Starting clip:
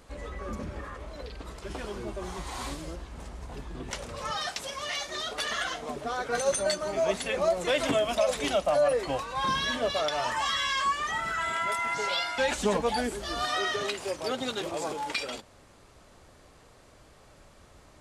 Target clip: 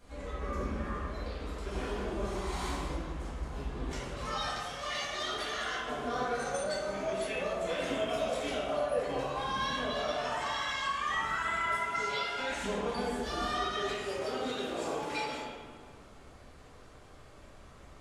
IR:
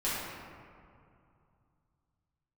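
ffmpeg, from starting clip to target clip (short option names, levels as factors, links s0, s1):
-filter_complex "[0:a]alimiter=level_in=1.06:limit=0.0631:level=0:latency=1:release=432,volume=0.944[s0];[1:a]atrim=start_sample=2205,asetrate=57330,aresample=44100[s1];[s0][s1]afir=irnorm=-1:irlink=0,volume=0.531"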